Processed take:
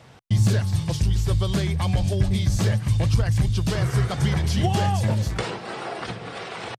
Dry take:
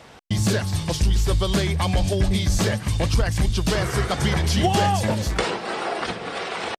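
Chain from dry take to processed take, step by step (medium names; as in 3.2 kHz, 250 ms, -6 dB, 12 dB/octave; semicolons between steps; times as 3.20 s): peaking EQ 120 Hz +12.5 dB 0.8 oct; trim -5.5 dB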